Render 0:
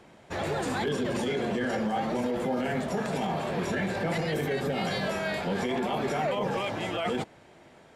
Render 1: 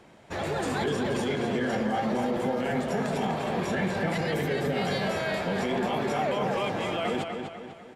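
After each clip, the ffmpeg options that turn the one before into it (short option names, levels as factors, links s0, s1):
-filter_complex "[0:a]asplit=2[s0][s1];[s1]adelay=248,lowpass=f=4700:p=1,volume=0.531,asplit=2[s2][s3];[s3]adelay=248,lowpass=f=4700:p=1,volume=0.47,asplit=2[s4][s5];[s5]adelay=248,lowpass=f=4700:p=1,volume=0.47,asplit=2[s6][s7];[s7]adelay=248,lowpass=f=4700:p=1,volume=0.47,asplit=2[s8][s9];[s9]adelay=248,lowpass=f=4700:p=1,volume=0.47,asplit=2[s10][s11];[s11]adelay=248,lowpass=f=4700:p=1,volume=0.47[s12];[s0][s2][s4][s6][s8][s10][s12]amix=inputs=7:normalize=0"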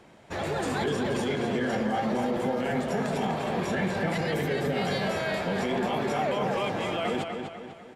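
-af anull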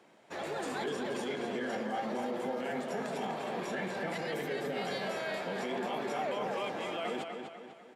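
-af "highpass=240,volume=0.473"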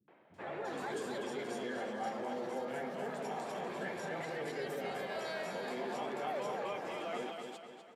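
-filter_complex "[0:a]areverse,acompressor=mode=upward:threshold=0.00355:ratio=2.5,areverse,acrossover=split=210|3000[s0][s1][s2];[s1]adelay=80[s3];[s2]adelay=340[s4];[s0][s3][s4]amix=inputs=3:normalize=0,volume=0.708"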